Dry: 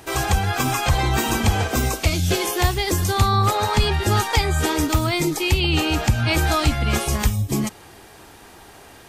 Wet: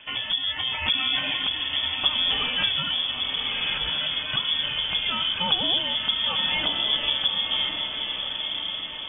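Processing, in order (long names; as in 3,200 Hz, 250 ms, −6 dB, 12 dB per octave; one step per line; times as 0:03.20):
downward compressor 4 to 1, threshold −22 dBFS, peak gain reduction 9 dB
0:03.11–0:04.23: hard clipping −28 dBFS, distortion −13 dB
rotating-speaker cabinet horn 0.7 Hz, later 5 Hz, at 0:06.48
feedback delay with all-pass diffusion 1,102 ms, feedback 54%, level −4.5 dB
voice inversion scrambler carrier 3,400 Hz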